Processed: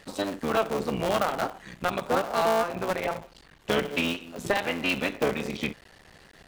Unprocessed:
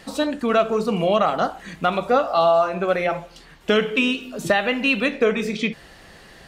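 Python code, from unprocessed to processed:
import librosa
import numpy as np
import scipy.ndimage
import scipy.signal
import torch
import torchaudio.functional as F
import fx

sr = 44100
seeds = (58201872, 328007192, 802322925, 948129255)

y = fx.cycle_switch(x, sr, every=3, mode='muted')
y = F.gain(torch.from_numpy(y), -5.5).numpy()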